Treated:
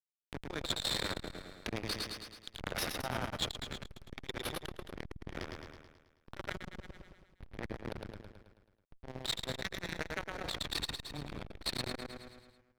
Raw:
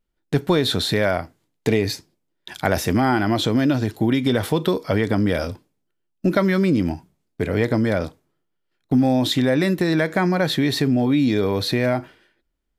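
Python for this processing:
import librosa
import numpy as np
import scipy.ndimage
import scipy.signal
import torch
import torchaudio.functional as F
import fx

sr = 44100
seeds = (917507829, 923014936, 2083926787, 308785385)

p1 = np.diff(x, prepend=0.0)
p2 = fx.backlash(p1, sr, play_db=-27.0)
p3 = np.convolve(p2, np.full(6, 1.0 / 6))[:len(p2)]
p4 = fx.clip_asym(p3, sr, top_db=-41.5, bottom_db=-24.5)
p5 = p4 + fx.echo_feedback(p4, sr, ms=108, feedback_pct=55, wet_db=-3.5, dry=0)
p6 = fx.transformer_sat(p5, sr, knee_hz=970.0)
y = F.gain(torch.from_numpy(p6), 8.5).numpy()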